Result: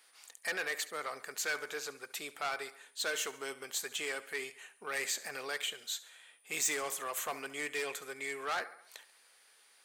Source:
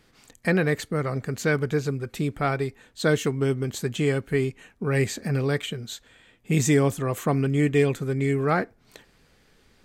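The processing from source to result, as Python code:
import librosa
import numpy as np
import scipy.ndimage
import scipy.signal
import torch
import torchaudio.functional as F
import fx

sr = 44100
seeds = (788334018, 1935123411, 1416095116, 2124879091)

p1 = scipy.signal.sosfilt(scipy.signal.cheby1(2, 1.0, 770.0, 'highpass', fs=sr, output='sos'), x)
p2 = p1 + fx.echo_feedback(p1, sr, ms=70, feedback_pct=52, wet_db=-18.5, dry=0)
p3 = 10.0 ** (-26.0 / 20.0) * np.tanh(p2 / 10.0 ** (-26.0 / 20.0))
p4 = fx.tilt_eq(p3, sr, slope=2.0)
p5 = p4 + 10.0 ** (-63.0 / 20.0) * np.sin(2.0 * np.pi * 9400.0 * np.arange(len(p4)) / sr)
y = F.gain(torch.from_numpy(p5), -4.0).numpy()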